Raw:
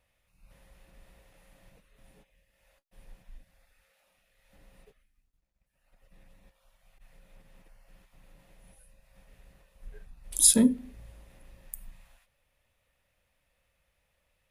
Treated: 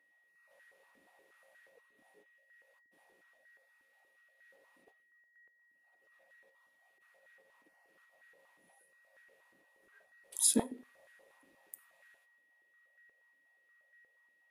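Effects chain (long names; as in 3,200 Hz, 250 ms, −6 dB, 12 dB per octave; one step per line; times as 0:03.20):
steady tone 1,900 Hz −61 dBFS
high-pass on a step sequencer 8.4 Hz 290–1,600 Hz
level −9 dB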